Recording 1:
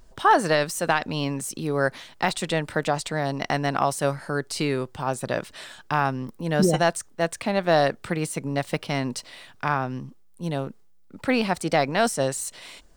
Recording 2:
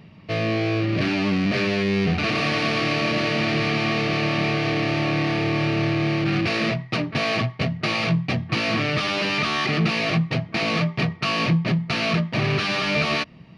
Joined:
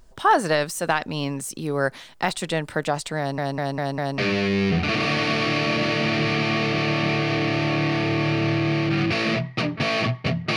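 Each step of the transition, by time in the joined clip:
recording 1
3.18 stutter in place 0.20 s, 5 plays
4.18 switch to recording 2 from 1.53 s

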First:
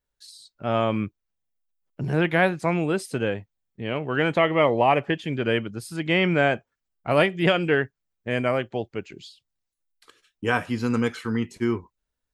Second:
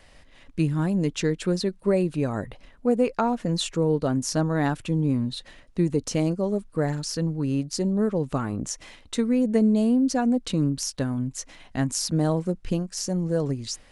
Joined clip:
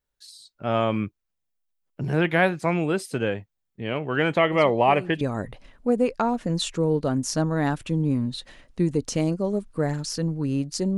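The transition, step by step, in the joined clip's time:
first
4.52 add second from 1.51 s 0.69 s -14 dB
5.21 switch to second from 2.2 s

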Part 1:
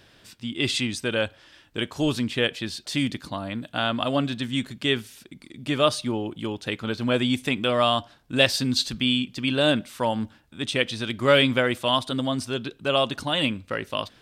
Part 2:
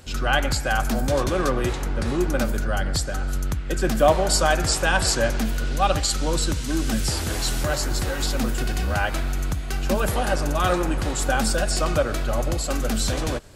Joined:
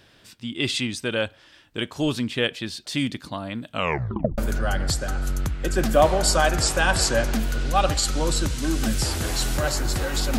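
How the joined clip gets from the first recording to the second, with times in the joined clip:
part 1
3.7 tape stop 0.68 s
4.38 switch to part 2 from 2.44 s

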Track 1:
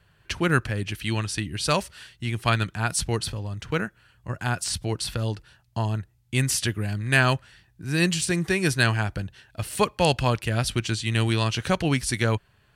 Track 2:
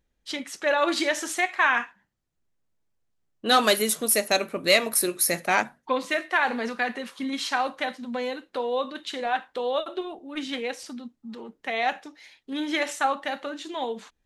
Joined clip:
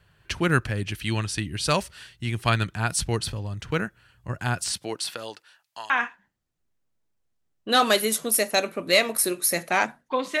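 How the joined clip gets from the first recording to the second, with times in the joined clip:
track 1
4.7–5.9 HPF 230 Hz -> 1300 Hz
5.9 switch to track 2 from 1.67 s

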